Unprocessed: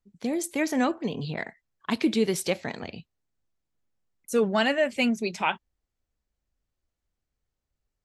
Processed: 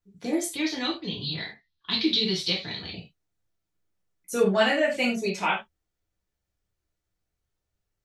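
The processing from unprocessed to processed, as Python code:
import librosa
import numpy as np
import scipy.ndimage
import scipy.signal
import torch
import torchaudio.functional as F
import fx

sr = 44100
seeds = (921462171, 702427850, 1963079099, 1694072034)

y = fx.curve_eq(x, sr, hz=(110.0, 360.0, 620.0, 960.0, 1500.0, 2300.0, 4000.0, 7800.0, 13000.0), db=(0, -6, -13, -6, -7, -2, 14, -16, -22), at=(0.52, 2.93))
y = fx.rev_gated(y, sr, seeds[0], gate_ms=120, shape='falling', drr_db=-4.5)
y = y * librosa.db_to_amplitude(-4.0)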